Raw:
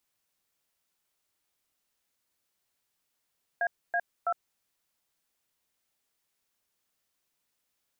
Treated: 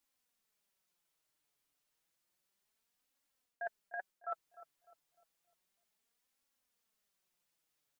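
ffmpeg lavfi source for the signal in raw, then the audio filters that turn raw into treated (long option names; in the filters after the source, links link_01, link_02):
-f lavfi -i "aevalsrc='0.0422*clip(min(mod(t,0.328),0.06-mod(t,0.328))/0.002,0,1)*(eq(floor(t/0.328),0)*(sin(2*PI*697*mod(t,0.328))+sin(2*PI*1633*mod(t,0.328)))+eq(floor(t/0.328),1)*(sin(2*PI*697*mod(t,0.328))+sin(2*PI*1633*mod(t,0.328)))+eq(floor(t/0.328),2)*(sin(2*PI*697*mod(t,0.328))+sin(2*PI*1336*mod(t,0.328))))':duration=0.984:sample_rate=44100"
-filter_complex "[0:a]flanger=delay=3.5:depth=3.7:regen=21:speed=0.31:shape=triangular,areverse,acompressor=threshold=-38dB:ratio=6,areverse,asplit=2[link_01][link_02];[link_02]adelay=301,lowpass=frequency=840:poles=1,volume=-12.5dB,asplit=2[link_03][link_04];[link_04]adelay=301,lowpass=frequency=840:poles=1,volume=0.52,asplit=2[link_05][link_06];[link_06]adelay=301,lowpass=frequency=840:poles=1,volume=0.52,asplit=2[link_07][link_08];[link_08]adelay=301,lowpass=frequency=840:poles=1,volume=0.52,asplit=2[link_09][link_10];[link_10]adelay=301,lowpass=frequency=840:poles=1,volume=0.52[link_11];[link_01][link_03][link_05][link_07][link_09][link_11]amix=inputs=6:normalize=0"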